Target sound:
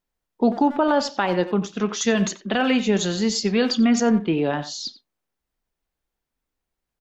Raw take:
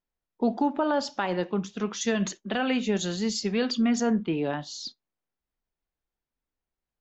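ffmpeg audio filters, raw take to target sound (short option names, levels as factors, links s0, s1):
-filter_complex "[0:a]asplit=2[s0][s1];[s1]adelay=90,highpass=300,lowpass=3400,asoftclip=type=hard:threshold=0.0708,volume=0.251[s2];[s0][s2]amix=inputs=2:normalize=0,volume=2"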